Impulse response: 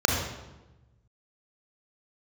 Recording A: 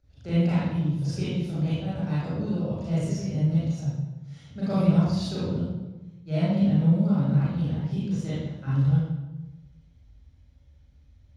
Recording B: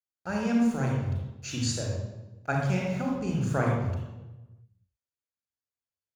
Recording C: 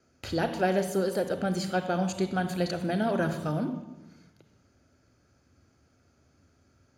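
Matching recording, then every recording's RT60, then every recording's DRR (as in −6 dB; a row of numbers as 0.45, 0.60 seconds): B; 1.1, 1.1, 1.1 seconds; −10.5, −1.0, 8.5 decibels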